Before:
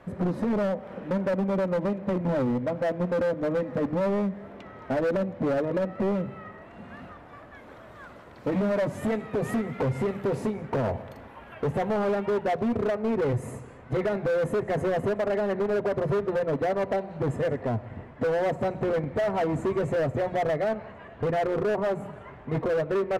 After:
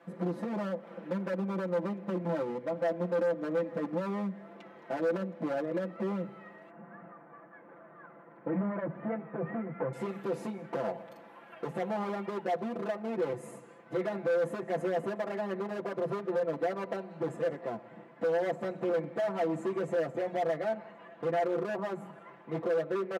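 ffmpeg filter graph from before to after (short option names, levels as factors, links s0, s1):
-filter_complex "[0:a]asettb=1/sr,asplit=3[s0][s1][s2];[s0]atrim=end=6.704[s3];[s1]atrim=start=6.7:end=9.93,asetpts=PTS-STARTPTS,afade=t=in:d=0.004:c=qsin,afade=t=out:st=3.226:d=0.004:c=qsin,lowpass=f=1900:w=0.5412,lowpass=f=1900:w=1.3066,equalizer=f=150:t=o:w=0.37:g=7[s4];[s2]atrim=start=9.926[s5];[s3][s4]acrossfade=d=0.004:c1=hsin:c2=qsin[s6];[s6][s5]acrossfade=d=0.004:c1=qsin:c2=hsin,highpass=f=190:w=0.5412,highpass=f=190:w=1.3066,aecho=1:1:5.9:0.95,volume=0.376"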